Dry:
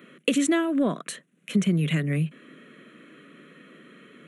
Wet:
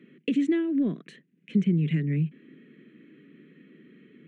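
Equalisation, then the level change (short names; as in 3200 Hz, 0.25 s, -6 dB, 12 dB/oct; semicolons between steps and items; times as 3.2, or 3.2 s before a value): tape spacing loss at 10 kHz 25 dB; band shelf 870 Hz -15.5 dB; high shelf 3200 Hz -7.5 dB; 0.0 dB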